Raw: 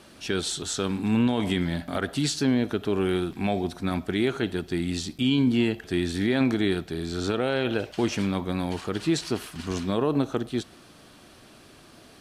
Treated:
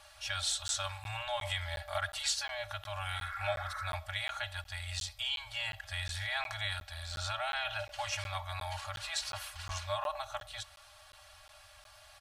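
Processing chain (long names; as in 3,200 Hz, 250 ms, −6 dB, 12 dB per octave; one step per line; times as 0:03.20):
healed spectral selection 0:03.17–0:03.84, 1,000–2,200 Hz
comb filter 3.6 ms, depth 77%
brick-wall band-stop 110–580 Hz
regular buffer underruns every 0.36 s, samples 512, zero, from 0:00.68
level −5 dB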